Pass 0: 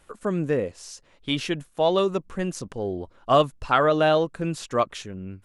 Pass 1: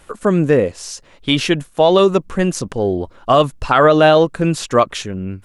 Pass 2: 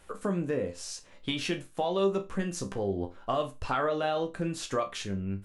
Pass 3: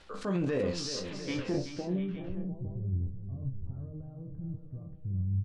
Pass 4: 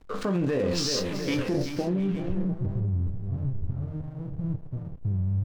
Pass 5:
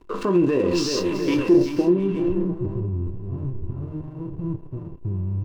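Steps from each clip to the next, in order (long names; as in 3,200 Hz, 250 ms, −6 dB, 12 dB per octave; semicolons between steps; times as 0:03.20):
boost into a limiter +12 dB; level −1 dB
downward compressor 3 to 1, threshold −19 dBFS, peak gain reduction 9.5 dB; resonators tuned to a chord C2 sus4, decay 0.24 s
transient designer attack −6 dB, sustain +8 dB; low-pass filter sweep 4,600 Hz → 110 Hz, 0:01.01–0:02.14; multi-tap delay 379/700/858 ms −10.5/−13.5/−15 dB
in parallel at −1 dB: compressor whose output falls as the input rises −34 dBFS, ratio −0.5; on the sum: slack as between gear wheels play −39 dBFS; level +2.5 dB
hollow resonant body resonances 350/1,000/2,700 Hz, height 15 dB, ringing for 45 ms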